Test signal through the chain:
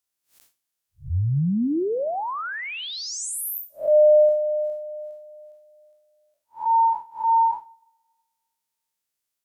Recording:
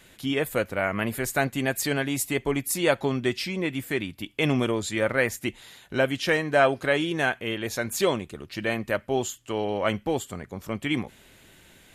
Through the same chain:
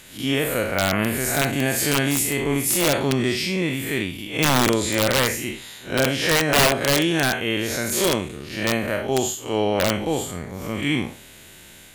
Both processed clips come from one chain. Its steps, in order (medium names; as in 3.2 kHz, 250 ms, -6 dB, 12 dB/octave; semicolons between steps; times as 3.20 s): spectral blur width 133 ms; peaking EQ 12 kHz +6.5 dB 2.4 oct; two-slope reverb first 0.4 s, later 1.6 s, from -18 dB, DRR 16.5 dB; integer overflow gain 17.5 dB; trim +7.5 dB